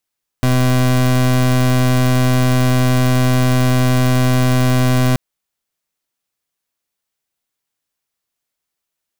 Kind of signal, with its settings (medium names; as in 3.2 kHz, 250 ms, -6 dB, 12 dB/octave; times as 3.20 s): pulse 127 Hz, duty 29% -13 dBFS 4.73 s